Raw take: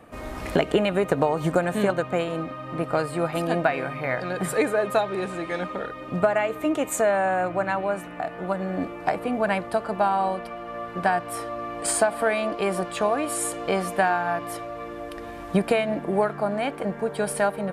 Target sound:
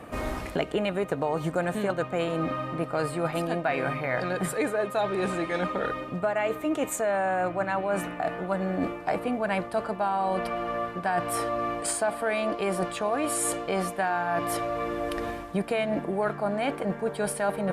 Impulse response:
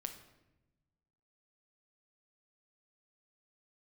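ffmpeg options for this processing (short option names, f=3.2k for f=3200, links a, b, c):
-af "areverse,acompressor=threshold=-31dB:ratio=5,areverse,volume=6dB" -ar 48000 -c:a libopus -b:a 64k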